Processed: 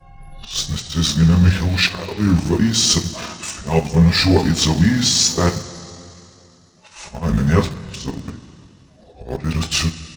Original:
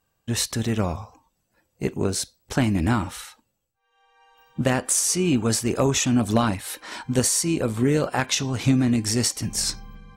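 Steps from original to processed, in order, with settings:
played backwards from end to start
volume swells 164 ms
coupled-rooms reverb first 0.23 s, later 2.9 s, from −18 dB, DRR 1.5 dB
pitch shifter −6.5 semitones
in parallel at −10.5 dB: centre clipping without the shift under −24.5 dBFS
on the sum: level +2.5 dB

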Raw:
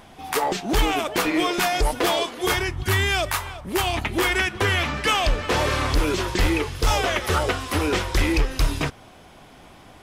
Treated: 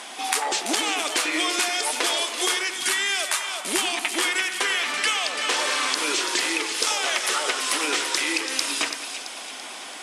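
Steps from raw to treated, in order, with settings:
elliptic band-pass filter 250–9,400 Hz, stop band 50 dB
spectral tilt +4 dB per octave
downward compressor 6 to 1, threshold −31 dBFS, peak gain reduction 17.5 dB
on a send: echo with a time of its own for lows and highs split 2,300 Hz, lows 95 ms, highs 335 ms, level −8 dB
on the sum: level +8.5 dB

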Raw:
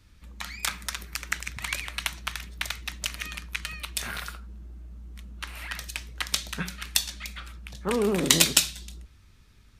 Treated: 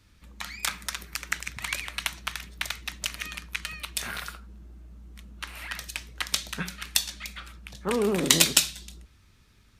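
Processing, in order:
low-shelf EQ 72 Hz −7 dB

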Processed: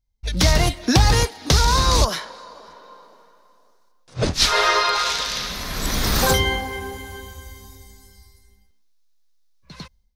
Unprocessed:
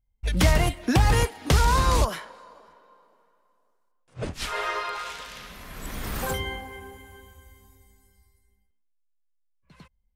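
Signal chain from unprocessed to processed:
flat-topped bell 4,800 Hz +9 dB 1 octave
automatic gain control gain up to 13 dB
level −1 dB

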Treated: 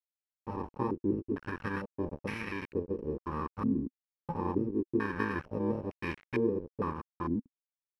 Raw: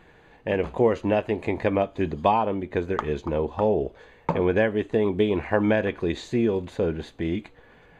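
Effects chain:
samples in bit-reversed order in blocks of 64 samples
bit reduction 5 bits
low-pass on a step sequencer 2.2 Hz 260–2,100 Hz
level −8.5 dB

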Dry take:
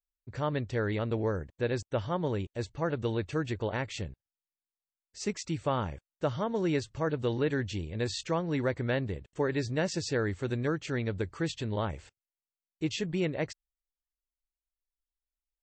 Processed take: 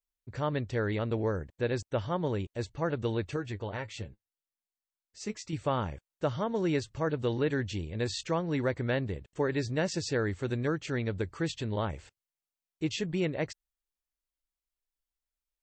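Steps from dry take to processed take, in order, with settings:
0:03.36–0:05.53: flanger 1.6 Hz, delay 8.5 ms, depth 2.1 ms, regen +39%

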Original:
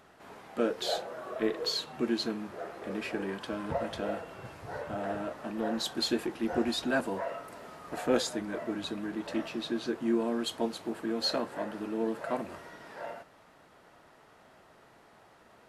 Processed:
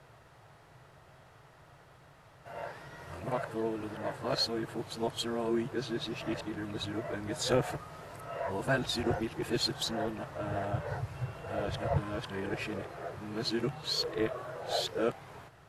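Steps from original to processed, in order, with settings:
played backwards from end to start
low shelf with overshoot 170 Hz +7.5 dB, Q 3

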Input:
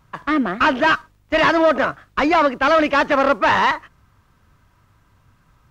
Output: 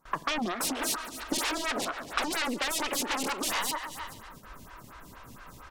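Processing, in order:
noise gate with hold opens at −48 dBFS
sine wavefolder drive 14 dB, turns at −6 dBFS
parametric band 100 Hz −9.5 dB 0.8 octaves
repeating echo 142 ms, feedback 42%, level −16.5 dB
downward compressor 16 to 1, threshold −23 dBFS, peak gain reduction 16 dB
high-shelf EQ 4,300 Hz +7 dB
phaser with staggered stages 4.3 Hz
level −4 dB

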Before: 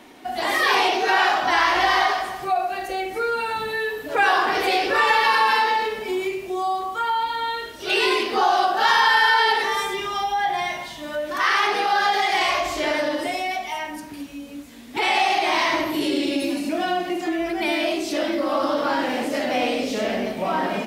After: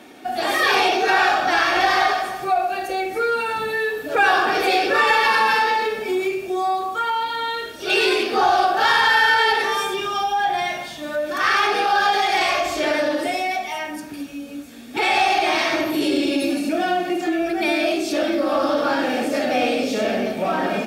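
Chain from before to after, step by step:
in parallel at −6 dB: asymmetric clip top −24 dBFS
on the sum: notch comb filter 1,000 Hz

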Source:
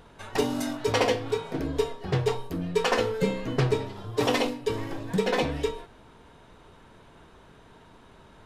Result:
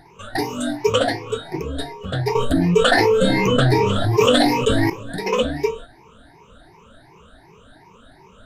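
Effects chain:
rippled gain that drifts along the octave scale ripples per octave 0.78, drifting +2.7 Hz, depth 24 dB
0:02.35–0:04.90: envelope flattener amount 70%
level −1 dB

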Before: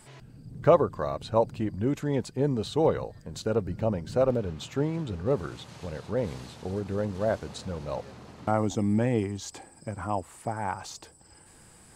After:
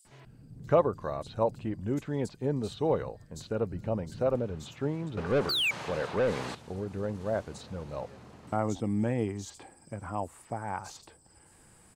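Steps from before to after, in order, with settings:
multiband delay without the direct sound highs, lows 50 ms, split 4,400 Hz
0:05.49–0:05.71: sound drawn into the spectrogram fall 2,200–4,800 Hz −27 dBFS
0:05.17–0:06.55: mid-hump overdrive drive 24 dB, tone 2,500 Hz, clips at −14.5 dBFS
level −4 dB

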